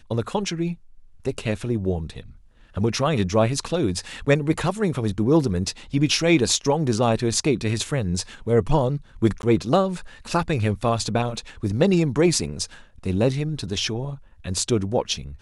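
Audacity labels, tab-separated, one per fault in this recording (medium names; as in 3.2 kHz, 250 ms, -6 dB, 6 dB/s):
9.420000	9.430000	dropout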